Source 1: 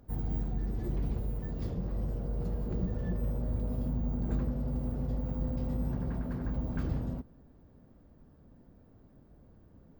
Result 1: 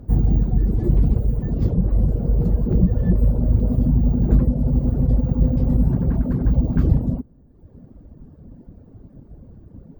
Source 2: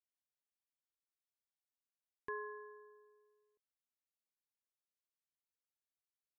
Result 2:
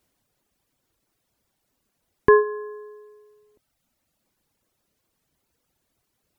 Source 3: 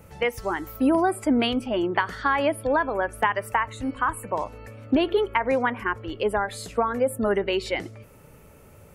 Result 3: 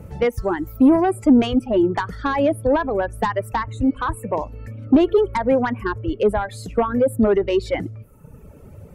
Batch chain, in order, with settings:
harmonic generator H 5 −11 dB, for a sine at −7 dBFS
reverb reduction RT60 1.1 s
tilt shelving filter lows +7.5 dB, about 680 Hz
loudness normalisation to −20 LKFS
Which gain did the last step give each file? +4.0, +21.0, −2.0 decibels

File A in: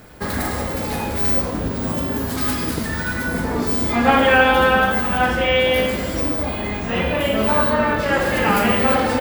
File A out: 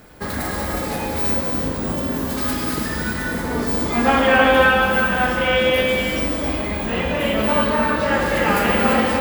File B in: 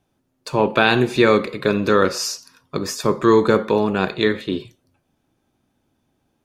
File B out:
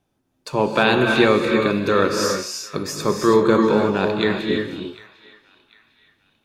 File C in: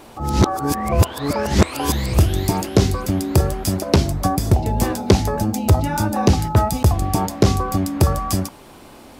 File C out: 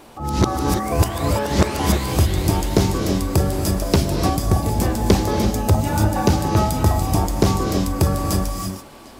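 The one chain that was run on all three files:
mains-hum notches 60/120 Hz
feedback echo with a band-pass in the loop 750 ms, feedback 42%, band-pass 2,600 Hz, level −18.5 dB
reverb whose tail is shaped and stops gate 360 ms rising, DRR 2.5 dB
level −2 dB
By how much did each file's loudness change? −0.5, −0.5, −0.5 LU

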